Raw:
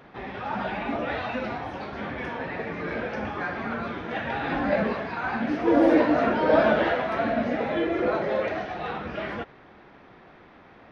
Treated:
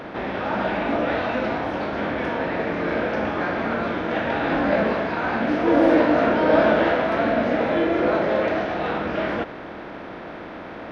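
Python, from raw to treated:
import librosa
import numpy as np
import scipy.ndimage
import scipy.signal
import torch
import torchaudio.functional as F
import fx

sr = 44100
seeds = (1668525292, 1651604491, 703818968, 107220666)

y = fx.bin_compress(x, sr, power=0.6)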